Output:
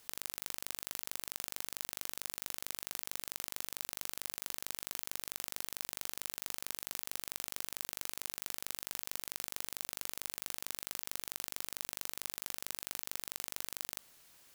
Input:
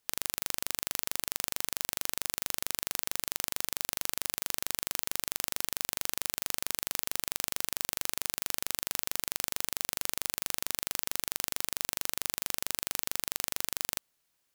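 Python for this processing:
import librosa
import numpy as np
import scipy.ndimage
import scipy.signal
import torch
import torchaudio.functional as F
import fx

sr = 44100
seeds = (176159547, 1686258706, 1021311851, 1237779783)

y = fx.over_compress(x, sr, threshold_db=-45.0, ratio=-1.0)
y = y * 10.0 ** (3.5 / 20.0)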